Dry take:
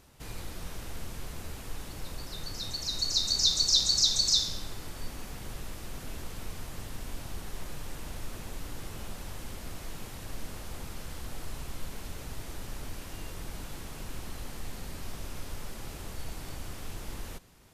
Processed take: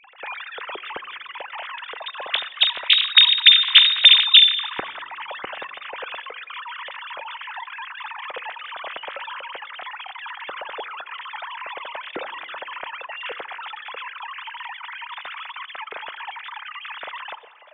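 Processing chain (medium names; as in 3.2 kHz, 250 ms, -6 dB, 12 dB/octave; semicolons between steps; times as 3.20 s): formants replaced by sine waves; on a send at -18 dB: reverberation RT60 2.0 s, pre-delay 4 ms; on the sum: loudness maximiser +15.5 dB; trim -1 dB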